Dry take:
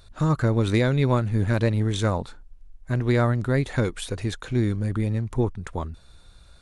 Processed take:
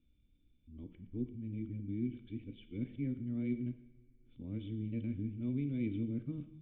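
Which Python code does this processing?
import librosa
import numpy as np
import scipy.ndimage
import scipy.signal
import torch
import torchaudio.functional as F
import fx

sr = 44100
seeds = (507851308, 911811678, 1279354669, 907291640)

y = x[::-1].copy()
y = fx.formant_cascade(y, sr, vowel='i')
y = fx.peak_eq(y, sr, hz=860.0, db=-7.5, octaves=0.95)
y = fx.rev_double_slope(y, sr, seeds[0], early_s=0.82, late_s=2.5, knee_db=-18, drr_db=8.5)
y = F.gain(torch.from_numpy(y), -7.5).numpy()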